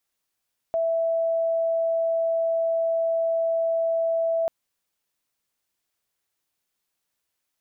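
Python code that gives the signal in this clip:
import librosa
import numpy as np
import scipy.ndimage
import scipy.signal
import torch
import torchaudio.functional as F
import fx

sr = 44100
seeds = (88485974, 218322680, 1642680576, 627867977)

y = 10.0 ** (-20.5 / 20.0) * np.sin(2.0 * np.pi * (660.0 * (np.arange(round(3.74 * sr)) / sr)))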